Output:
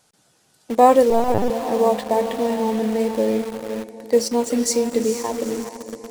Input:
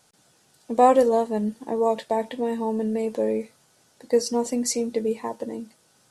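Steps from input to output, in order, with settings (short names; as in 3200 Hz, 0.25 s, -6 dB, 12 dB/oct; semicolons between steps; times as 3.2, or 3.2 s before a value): diffused feedback echo 0.456 s, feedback 48%, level -8.5 dB; 1.1–1.5 LPC vocoder at 8 kHz pitch kept; in parallel at -6 dB: bit-crush 5-bit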